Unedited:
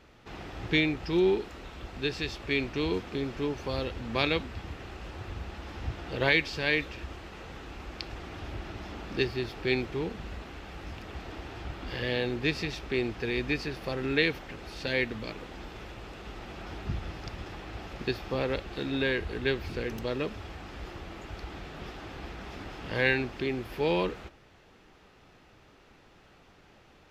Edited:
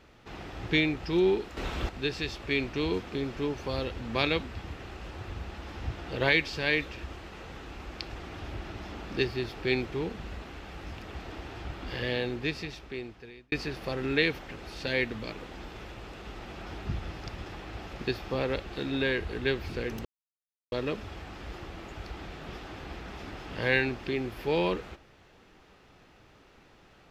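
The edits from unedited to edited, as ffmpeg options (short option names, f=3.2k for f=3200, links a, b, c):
-filter_complex "[0:a]asplit=5[a][b][c][d][e];[a]atrim=end=1.572[f];[b]atrim=start=1.568:end=1.892,asetpts=PTS-STARTPTS,volume=10dB[g];[c]atrim=start=1.888:end=13.52,asetpts=PTS-STARTPTS,afade=t=out:st=10.142:d=1.49[h];[d]atrim=start=13.52:end=20.05,asetpts=PTS-STARTPTS,afade=t=in:d=0.004:c=hsin,afade=t=out:st=6.526:d=0.004:c=hsin,apad=pad_dur=0.67[i];[e]atrim=start=20.05,asetpts=PTS-STARTPTS,afade=t=in:d=0.004:c=hsin[j];[f][g]acrossfade=d=0.004:c1=hsin:c2=hsin[k];[h][i][j]concat=n=3:v=0:a=1[l];[k][l]acrossfade=d=0.004:c1=hsin:c2=hsin"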